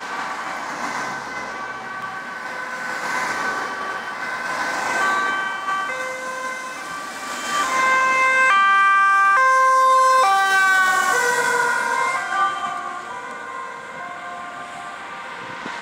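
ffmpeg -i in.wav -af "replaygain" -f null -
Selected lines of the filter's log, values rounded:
track_gain = +0.1 dB
track_peak = 0.271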